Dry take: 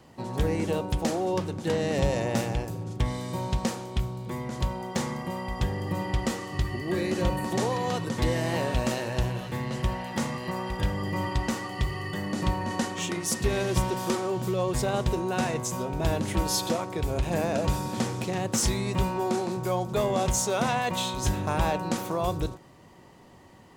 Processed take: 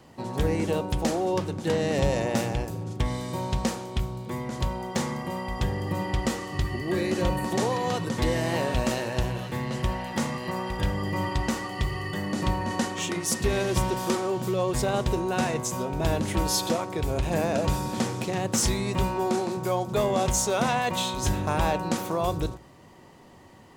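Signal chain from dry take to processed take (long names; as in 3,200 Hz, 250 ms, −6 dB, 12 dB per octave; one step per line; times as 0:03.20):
mains-hum notches 60/120/180 Hz
level +1.5 dB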